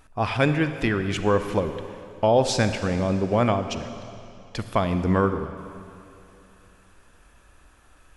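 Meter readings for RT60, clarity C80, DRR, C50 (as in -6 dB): 2.7 s, 10.0 dB, 9.0 dB, 9.5 dB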